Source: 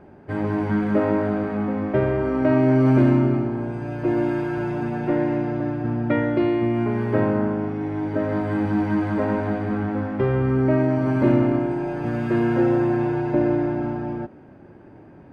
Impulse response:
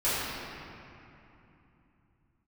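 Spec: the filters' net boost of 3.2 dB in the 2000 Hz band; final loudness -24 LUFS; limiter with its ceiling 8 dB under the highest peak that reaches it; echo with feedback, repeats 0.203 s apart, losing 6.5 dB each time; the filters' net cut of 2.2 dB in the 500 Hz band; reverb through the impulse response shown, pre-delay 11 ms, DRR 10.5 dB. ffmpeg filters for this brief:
-filter_complex "[0:a]equalizer=f=500:t=o:g=-3.5,equalizer=f=2k:t=o:g=4.5,alimiter=limit=-15.5dB:level=0:latency=1,aecho=1:1:203|406|609|812|1015|1218:0.473|0.222|0.105|0.0491|0.0231|0.0109,asplit=2[a][b];[1:a]atrim=start_sample=2205,adelay=11[c];[b][c]afir=irnorm=-1:irlink=0,volume=-23.5dB[d];[a][d]amix=inputs=2:normalize=0,volume=-1.5dB"

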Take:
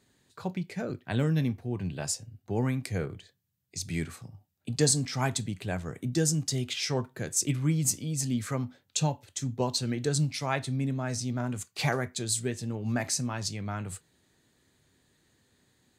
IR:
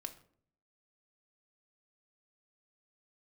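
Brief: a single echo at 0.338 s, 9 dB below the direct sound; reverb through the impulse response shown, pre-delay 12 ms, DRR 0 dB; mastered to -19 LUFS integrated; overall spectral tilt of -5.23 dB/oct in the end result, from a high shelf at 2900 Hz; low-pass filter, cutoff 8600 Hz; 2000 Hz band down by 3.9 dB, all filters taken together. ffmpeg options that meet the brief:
-filter_complex "[0:a]lowpass=8.6k,equalizer=f=2k:t=o:g=-3.5,highshelf=f=2.9k:g=-4,aecho=1:1:338:0.355,asplit=2[a][b];[1:a]atrim=start_sample=2205,adelay=12[c];[b][c]afir=irnorm=-1:irlink=0,volume=3dB[d];[a][d]amix=inputs=2:normalize=0,volume=9.5dB"

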